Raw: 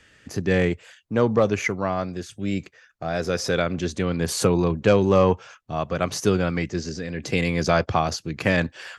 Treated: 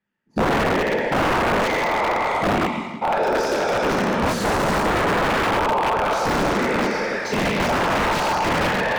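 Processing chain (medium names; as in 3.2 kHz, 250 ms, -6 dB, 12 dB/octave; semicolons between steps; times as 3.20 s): spectral sustain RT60 2.68 s; spectral noise reduction 23 dB; peaking EQ 90 Hz +6 dB 0.29 oct; waveshaping leveller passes 3; peak limiter -9.5 dBFS, peak gain reduction 8 dB; whisper effect; small resonant body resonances 200/890 Hz, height 16 dB, ringing for 45 ms; on a send: two-band feedback delay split 520 Hz, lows 163 ms, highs 113 ms, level -15 dB; on the sum: integer overflow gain 6.5 dB; overdrive pedal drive 14 dB, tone 1 kHz, clips at -6.5 dBFS; trim -5 dB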